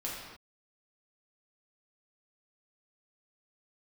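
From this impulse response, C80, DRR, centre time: 2.5 dB, -5.5 dB, 73 ms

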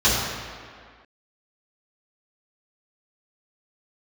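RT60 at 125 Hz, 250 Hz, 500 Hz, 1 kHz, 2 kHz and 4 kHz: 1.5, 1.8, 1.9, 2.1, 1.9, 1.4 s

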